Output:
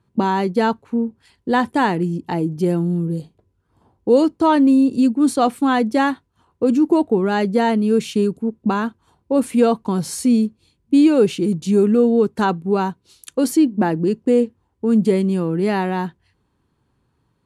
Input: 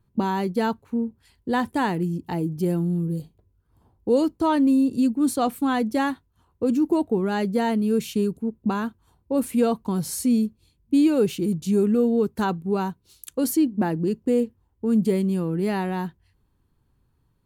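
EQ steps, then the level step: HPF 190 Hz 6 dB/oct; LPF 11000 Hz 24 dB/oct; high shelf 6000 Hz -6 dB; +7.0 dB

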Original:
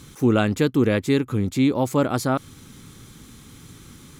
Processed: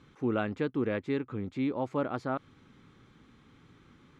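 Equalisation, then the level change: LPF 2300 Hz 12 dB/oct; low shelf 200 Hz -8.5 dB; -8.5 dB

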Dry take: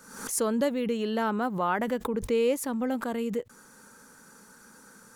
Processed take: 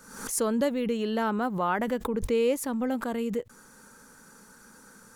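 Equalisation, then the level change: low shelf 61 Hz +9.5 dB; 0.0 dB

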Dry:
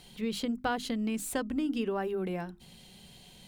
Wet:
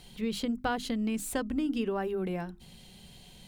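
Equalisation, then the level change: low shelf 94 Hz +7 dB; 0.0 dB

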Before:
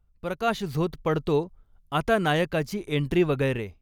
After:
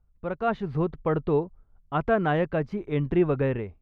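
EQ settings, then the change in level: LPF 1600 Hz 12 dB/oct; 0.0 dB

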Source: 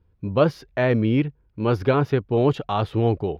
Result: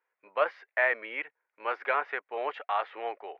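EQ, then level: HPF 610 Hz 24 dB/oct; synth low-pass 2000 Hz, resonance Q 3.7; -5.5 dB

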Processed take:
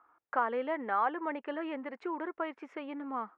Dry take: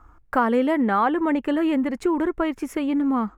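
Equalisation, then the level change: BPF 540–2600 Hz; air absorption 61 m; -7.5 dB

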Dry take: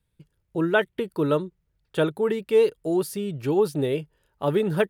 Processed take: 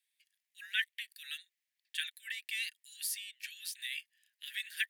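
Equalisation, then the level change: steep high-pass 1700 Hz 96 dB/oct; +1.0 dB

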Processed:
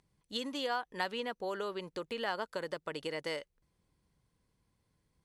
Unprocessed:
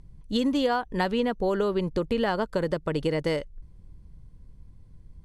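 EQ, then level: HPF 1100 Hz 6 dB/oct; -4.0 dB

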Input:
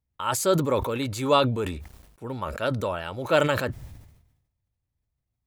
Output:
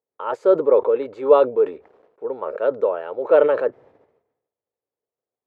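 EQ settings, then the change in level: resonant high-pass 450 Hz, resonance Q 4.9; LPF 1400 Hz 12 dB/oct; 0.0 dB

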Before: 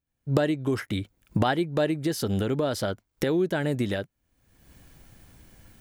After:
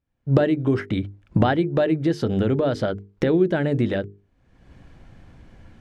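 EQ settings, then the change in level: notches 50/100/150/200/250/300/350/400/450 Hz; dynamic EQ 970 Hz, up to -4 dB, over -41 dBFS, Q 1.7; tape spacing loss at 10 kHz 25 dB; +7.5 dB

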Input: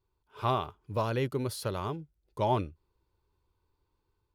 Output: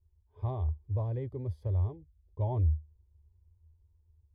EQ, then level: running mean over 32 samples; bell 76 Hz +9 dB 0.32 oct; resonant low shelf 120 Hz +12 dB, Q 3; -6.0 dB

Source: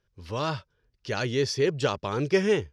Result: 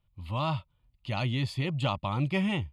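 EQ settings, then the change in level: low shelf 460 Hz +4.5 dB; fixed phaser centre 1600 Hz, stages 6; 0.0 dB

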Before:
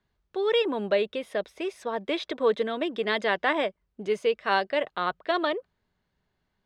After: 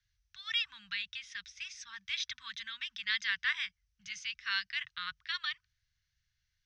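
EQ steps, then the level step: inverse Chebyshev band-stop 300–630 Hz, stop band 70 dB; synth low-pass 5900 Hz, resonance Q 6.8; air absorption 59 m; -2.5 dB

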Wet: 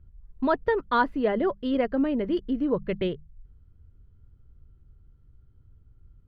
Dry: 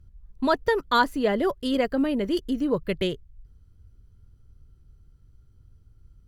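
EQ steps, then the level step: air absorption 390 m; notches 50/100/150/200 Hz; 0.0 dB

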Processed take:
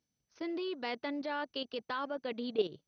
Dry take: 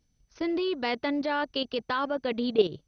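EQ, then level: Bessel high-pass 180 Hz, order 2; -8.0 dB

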